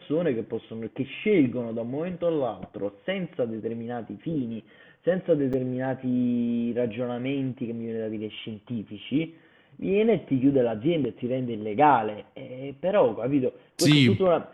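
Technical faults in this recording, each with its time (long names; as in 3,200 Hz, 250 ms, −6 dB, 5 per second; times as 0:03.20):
0:05.53–0:05.54: drop-out 6.2 ms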